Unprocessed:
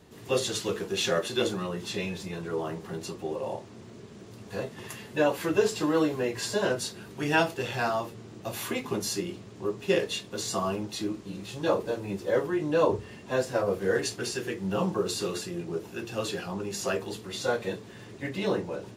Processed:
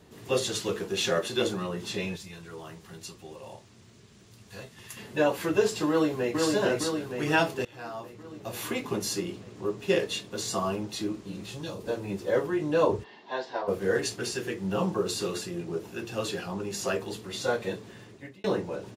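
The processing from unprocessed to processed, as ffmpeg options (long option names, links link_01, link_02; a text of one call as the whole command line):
ffmpeg -i in.wav -filter_complex "[0:a]asettb=1/sr,asplit=3[link_01][link_02][link_03];[link_01]atrim=end=2.164[link_04];[link_02]atrim=start=2.16:end=4.97,asetpts=PTS-STARTPTS,afade=type=in:duration=0.004:curve=qsin,afade=type=out:start_time=2.806:duration=0.004:curve=qsin,equalizer=frequency=420:width=0.32:gain=-12.5[link_05];[link_03]atrim=start=4.966[link_06];[link_04][link_05]acrossfade=duration=0.004:curve1=hsin:curve2=qsin[link_07];[link_07][link_06]acrossfade=duration=0.004:curve1=qsin:curve2=hsin,asplit=2[link_08][link_09];[link_09]afade=type=in:start_time=5.88:duration=0.01,afade=type=out:start_time=6.38:duration=0.01,aecho=0:1:460|920|1380|1840|2300|2760|3220|3680|4140|4600|5060:0.749894|0.487431|0.31683|0.20594|0.133861|0.0870095|0.0565562|0.0367615|0.023895|0.0155317|0.0100956[link_10];[link_08][link_10]amix=inputs=2:normalize=0,asettb=1/sr,asplit=3[link_11][link_12][link_13];[link_11]atrim=end=11.414[link_14];[link_12]atrim=start=11.41:end=11.88,asetpts=PTS-STARTPTS,afade=type=in:duration=0.004:curve=qsin,afade=type=out:start_time=0.466:duration=0.004:curve=qsin,acrossover=split=200|3000[link_15][link_16][link_17];[link_16]acompressor=threshold=-39dB:ratio=5:attack=3.2:release=140:knee=2.83:detection=peak[link_18];[link_15][link_18][link_17]amix=inputs=3:normalize=0[link_19];[link_13]atrim=start=11.876[link_20];[link_14][link_19]acrossfade=duration=0.004:curve1=hsin:curve2=qsin[link_21];[link_21][link_20]acrossfade=duration=0.004:curve1=qsin:curve2=hsin,asplit=3[link_22][link_23][link_24];[link_22]afade=type=out:start_time=13.03:duration=0.02[link_25];[link_23]highpass=460,equalizer=frequency=530:width_type=q:width=4:gain=-9,equalizer=frequency=900:width_type=q:width=4:gain=8,equalizer=frequency=1300:width_type=q:width=4:gain=-8,equalizer=frequency=2500:width_type=q:width=4:gain=-7,equalizer=frequency=3800:width_type=q:width=4:gain=3,lowpass=frequency=4400:width=0.5412,lowpass=frequency=4400:width=1.3066,afade=type=in:start_time=13.03:duration=0.02,afade=type=out:start_time=13.67:duration=0.02[link_26];[link_24]afade=type=in:start_time=13.67:duration=0.02[link_27];[link_25][link_26][link_27]amix=inputs=3:normalize=0,asplit=3[link_28][link_29][link_30];[link_28]atrim=end=7.65,asetpts=PTS-STARTPTS,afade=type=out:start_time=7.646:duration=0.004:curve=hsin:silence=0.0794328[link_31];[link_29]atrim=start=7.65:end=18.44,asetpts=PTS-STARTPTS,afade=type=in:duration=1.09:silence=0.0794328,afade=type=out:start_time=10.24:duration=0.55[link_32];[link_30]atrim=start=18.44,asetpts=PTS-STARTPTS,afade=type=in:duration=0.004:curve=hsin[link_33];[link_31][link_32][link_33]concat=n=3:v=0:a=1" out.wav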